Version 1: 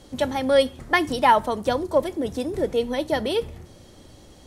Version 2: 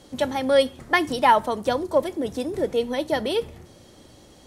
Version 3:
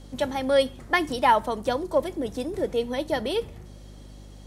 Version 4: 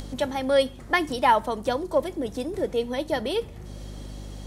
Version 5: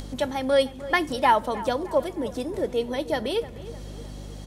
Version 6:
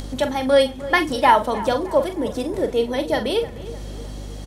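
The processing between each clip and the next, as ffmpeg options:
-af "lowshelf=f=71:g=-10.5"
-af "aeval=exprs='val(0)+0.00891*(sin(2*PI*50*n/s)+sin(2*PI*2*50*n/s)/2+sin(2*PI*3*50*n/s)/3+sin(2*PI*4*50*n/s)/4+sin(2*PI*5*50*n/s)/5)':c=same,volume=-2.5dB"
-af "acompressor=mode=upward:threshold=-29dB:ratio=2.5"
-filter_complex "[0:a]asplit=2[a][b];[b]adelay=307,lowpass=f=2.7k:p=1,volume=-16dB,asplit=2[c][d];[d]adelay=307,lowpass=f=2.7k:p=1,volume=0.52,asplit=2[e][f];[f]adelay=307,lowpass=f=2.7k:p=1,volume=0.52,asplit=2[g][h];[h]adelay=307,lowpass=f=2.7k:p=1,volume=0.52,asplit=2[i][j];[j]adelay=307,lowpass=f=2.7k:p=1,volume=0.52[k];[a][c][e][g][i][k]amix=inputs=6:normalize=0"
-filter_complex "[0:a]asplit=2[a][b];[b]adelay=43,volume=-9dB[c];[a][c]amix=inputs=2:normalize=0,volume=4.5dB"

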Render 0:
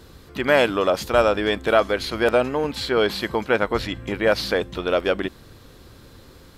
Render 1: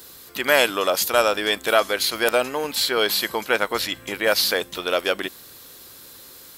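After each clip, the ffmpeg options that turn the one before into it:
-af "aemphasis=mode=production:type=riaa"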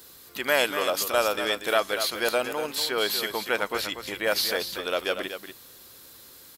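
-af "aecho=1:1:239:0.355,volume=-5.5dB"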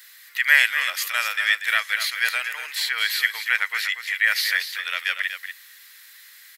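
-af "highpass=f=1.9k:t=q:w=6.4"

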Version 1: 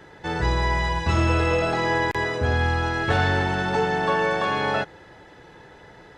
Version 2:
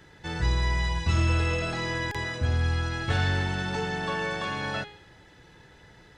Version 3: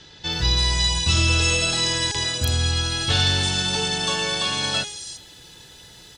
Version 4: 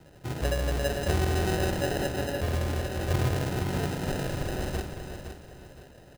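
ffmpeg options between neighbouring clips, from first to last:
-af "equalizer=f=650:w=0.4:g=-10.5,bandreject=f=415.2:t=h:w=4,bandreject=f=830.4:t=h:w=4,bandreject=f=1.2456k:t=h:w=4,bandreject=f=1.6608k:t=h:w=4,bandreject=f=2.076k:t=h:w=4,bandreject=f=2.4912k:t=h:w=4,bandreject=f=2.9064k:t=h:w=4,bandreject=f=3.3216k:t=h:w=4,bandreject=f=3.7368k:t=h:w=4,bandreject=f=4.152k:t=h:w=4,bandreject=f=4.5672k:t=h:w=4,bandreject=f=4.9824k:t=h:w=4,bandreject=f=5.3976k:t=h:w=4,bandreject=f=5.8128k:t=h:w=4,bandreject=f=6.228k:t=h:w=4,bandreject=f=6.6432k:t=h:w=4,bandreject=f=7.0584k:t=h:w=4,bandreject=f=7.4736k:t=h:w=4,bandreject=f=7.8888k:t=h:w=4,bandreject=f=8.304k:t=h:w=4,bandreject=f=8.7192k:t=h:w=4,bandreject=f=9.1344k:t=h:w=4,bandreject=f=9.5496k:t=h:w=4,bandreject=f=9.9648k:t=h:w=4,bandreject=f=10.38k:t=h:w=4,bandreject=f=10.7952k:t=h:w=4,bandreject=f=11.2104k:t=h:w=4"
-filter_complex "[0:a]acrossover=split=5600[a][b];[b]adelay=330[c];[a][c]amix=inputs=2:normalize=0,aexciter=amount=6.3:drive=6.3:freq=2.9k,volume=2.5dB"
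-af "acrusher=samples=39:mix=1:aa=0.000001,aecho=1:1:513|1026|1539|2052:0.355|0.11|0.0341|0.0106,volume=-7dB"

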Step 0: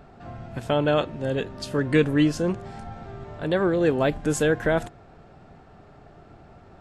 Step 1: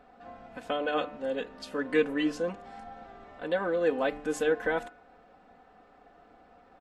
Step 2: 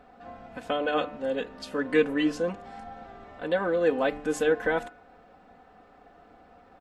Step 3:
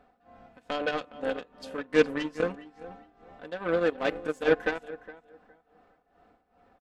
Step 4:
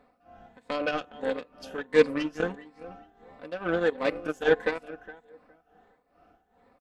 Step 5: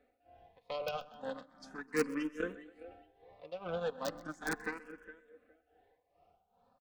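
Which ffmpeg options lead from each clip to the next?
-af "bass=f=250:g=-13,treble=f=4k:g=-7,aecho=1:1:4:0.78,bandreject=f=147.5:t=h:w=4,bandreject=f=295:t=h:w=4,bandreject=f=442.5:t=h:w=4,bandreject=f=590:t=h:w=4,bandreject=f=737.5:t=h:w=4,bandreject=f=885:t=h:w=4,bandreject=f=1.0325k:t=h:w=4,bandreject=f=1.18k:t=h:w=4,bandreject=f=1.3275k:t=h:w=4,bandreject=f=1.475k:t=h:w=4,bandreject=f=1.6225k:t=h:w=4,bandreject=f=1.77k:t=h:w=4,bandreject=f=1.9175k:t=h:w=4,bandreject=f=2.065k:t=h:w=4,bandreject=f=2.2125k:t=h:w=4,bandreject=f=2.36k:t=h:w=4,bandreject=f=2.5075k:t=h:w=4,bandreject=f=2.655k:t=h:w=4,bandreject=f=2.8025k:t=h:w=4,volume=-6dB"
-af "equalizer=f=95:t=o:w=1.8:g=3.5,volume=2.5dB"
-filter_complex "[0:a]asplit=2[a][b];[b]adelay=414,lowpass=f=3.6k:p=1,volume=-10dB,asplit=2[c][d];[d]adelay=414,lowpass=f=3.6k:p=1,volume=0.26,asplit=2[e][f];[f]adelay=414,lowpass=f=3.6k:p=1,volume=0.26[g];[a][c][e][g]amix=inputs=4:normalize=0,aeval=exprs='0.316*(cos(1*acos(clip(val(0)/0.316,-1,1)))-cos(1*PI/2))+0.0316*(cos(7*acos(clip(val(0)/0.316,-1,1)))-cos(7*PI/2))':c=same,tremolo=f=2.4:d=0.8,volume=4dB"
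-af "afftfilt=real='re*pow(10,7/40*sin(2*PI*(0.98*log(max(b,1)*sr/1024/100)/log(2)-(1.5)*(pts-256)/sr)))':imag='im*pow(10,7/40*sin(2*PI*(0.98*log(max(b,1)*sr/1024/100)/log(2)-(1.5)*(pts-256)/sr)))':win_size=1024:overlap=0.75"
-filter_complex "[0:a]acrossover=split=600[a][b];[b]aeval=exprs='(mod(7.94*val(0)+1,2)-1)/7.94':c=same[c];[a][c]amix=inputs=2:normalize=0,aecho=1:1:128|256|384|512:0.1|0.053|0.0281|0.0149,asplit=2[d][e];[e]afreqshift=0.36[f];[d][f]amix=inputs=2:normalize=1,volume=-6.5dB"

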